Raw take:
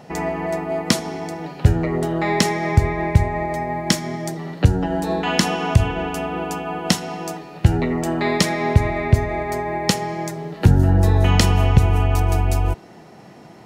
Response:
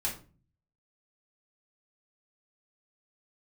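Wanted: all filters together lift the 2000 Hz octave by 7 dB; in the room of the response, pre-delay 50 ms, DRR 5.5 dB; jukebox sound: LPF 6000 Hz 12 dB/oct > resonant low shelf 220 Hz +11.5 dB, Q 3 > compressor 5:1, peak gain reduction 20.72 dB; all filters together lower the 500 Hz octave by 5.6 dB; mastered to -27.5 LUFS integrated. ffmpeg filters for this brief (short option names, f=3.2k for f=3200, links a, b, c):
-filter_complex "[0:a]equalizer=f=500:t=o:g=-4.5,equalizer=f=2k:t=o:g=8.5,asplit=2[a][b];[1:a]atrim=start_sample=2205,adelay=50[c];[b][c]afir=irnorm=-1:irlink=0,volume=-10dB[d];[a][d]amix=inputs=2:normalize=0,lowpass=6k,lowshelf=f=220:t=q:w=3:g=11.5,acompressor=threshold=-14dB:ratio=5,volume=-10.5dB"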